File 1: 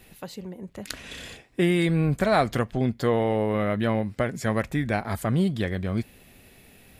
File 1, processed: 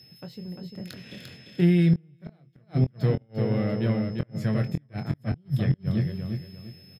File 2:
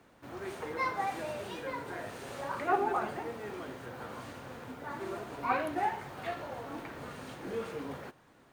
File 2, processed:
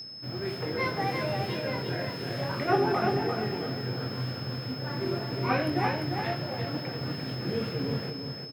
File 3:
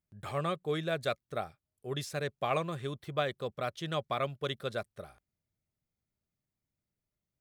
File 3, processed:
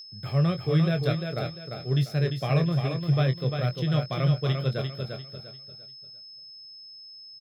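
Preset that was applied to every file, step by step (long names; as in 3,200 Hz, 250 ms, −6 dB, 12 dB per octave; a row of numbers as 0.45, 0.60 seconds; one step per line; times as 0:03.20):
one-sided soft clipper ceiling −14 dBFS
high-pass filter 96 Hz 24 dB per octave
on a send: repeating echo 347 ms, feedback 34%, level −5 dB
on the sum: dynamic equaliser 150 Hz, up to +7 dB, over −45 dBFS, Q 4.7
in parallel at −11 dB: dead-zone distortion −41 dBFS
on the sum: octave-band graphic EQ 125/1,000/8,000 Hz +12/−8/−12 dB
steady tone 5,200 Hz −42 dBFS
gate with flip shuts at −7 dBFS, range −37 dB
double-tracking delay 23 ms −8.5 dB
normalise the peak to −12 dBFS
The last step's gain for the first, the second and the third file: −6.5, +5.0, +2.0 decibels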